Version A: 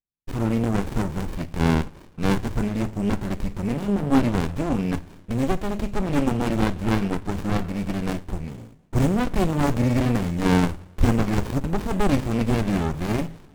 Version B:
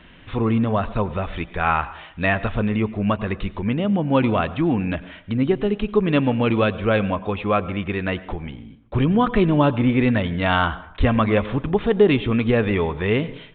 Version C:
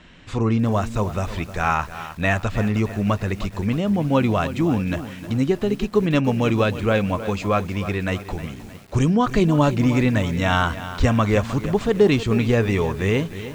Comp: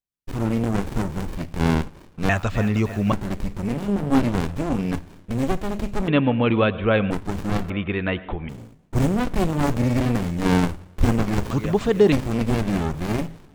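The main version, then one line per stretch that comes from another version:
A
2.29–3.12 s: from C
6.08–7.11 s: from B
7.70–8.49 s: from B
11.51–12.12 s: from C

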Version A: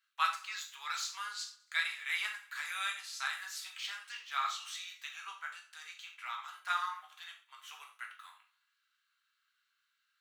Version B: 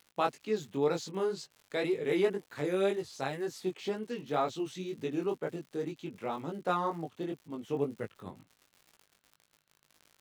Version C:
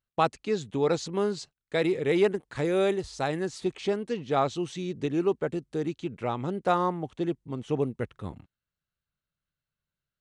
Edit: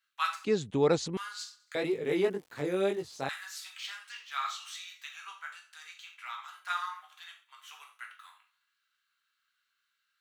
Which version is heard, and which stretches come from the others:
A
0.45–1.17 s: from C
1.75–3.29 s: from B

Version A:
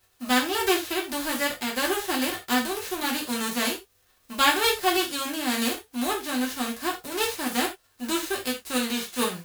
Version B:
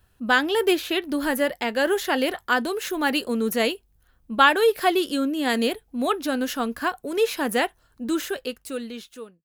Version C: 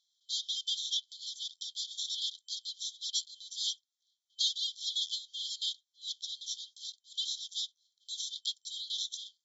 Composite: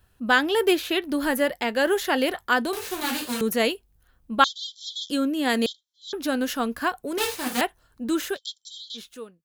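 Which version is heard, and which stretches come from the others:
B
2.73–3.41 s: from A
4.44–5.10 s: from C
5.66–6.13 s: from C
7.18–7.61 s: from A
8.36–8.97 s: from C, crossfade 0.06 s

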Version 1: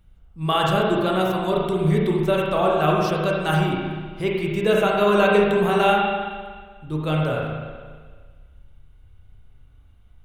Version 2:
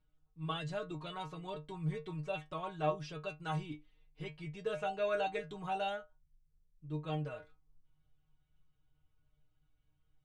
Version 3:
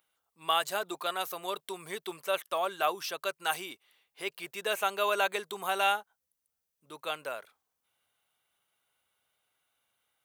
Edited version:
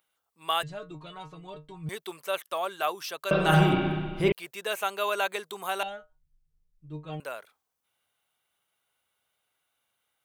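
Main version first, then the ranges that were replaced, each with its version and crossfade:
3
0.63–1.89 s: from 2
3.31–4.32 s: from 1
5.83–7.20 s: from 2

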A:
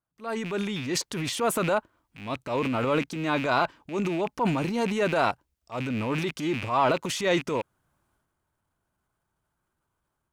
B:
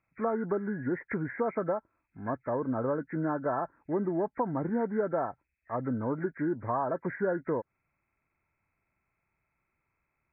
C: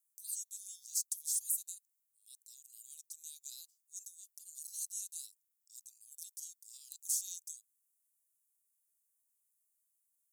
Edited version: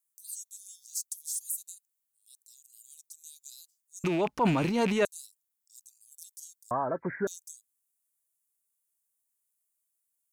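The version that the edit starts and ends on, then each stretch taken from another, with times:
C
4.04–5.05 s: from A
6.71–7.27 s: from B

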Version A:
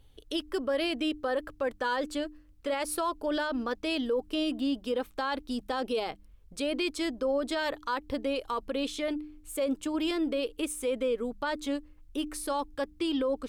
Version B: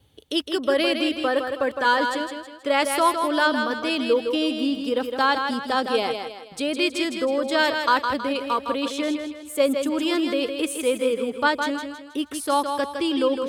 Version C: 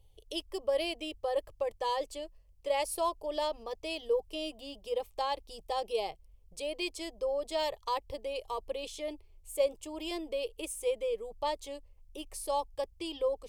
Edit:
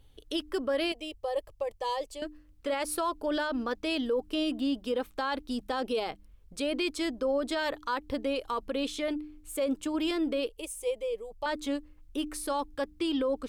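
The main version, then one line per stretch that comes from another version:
A
0.92–2.22 s: from C
10.49–11.46 s: from C
not used: B

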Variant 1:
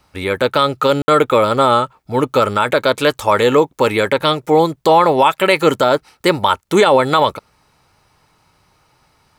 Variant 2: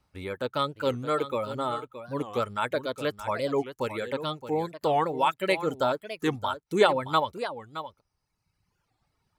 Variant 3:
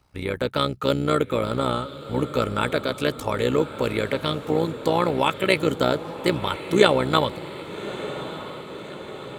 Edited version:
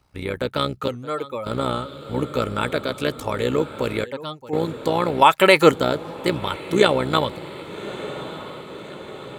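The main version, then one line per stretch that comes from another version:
3
0.88–1.46 s: from 2
4.04–4.53 s: from 2
5.22–5.71 s: from 1

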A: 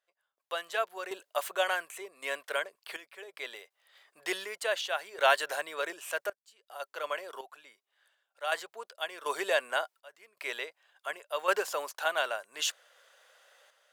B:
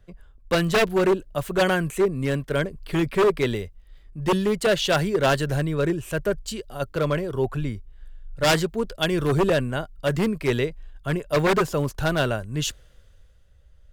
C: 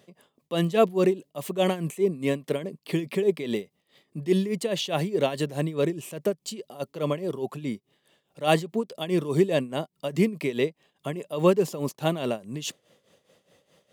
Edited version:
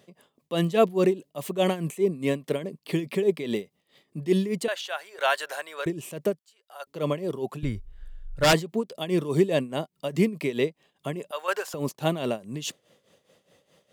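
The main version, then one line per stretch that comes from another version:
C
4.68–5.86 s: from A
6.39–6.87 s: from A
7.63–8.53 s: from B
11.31–11.74 s: from A

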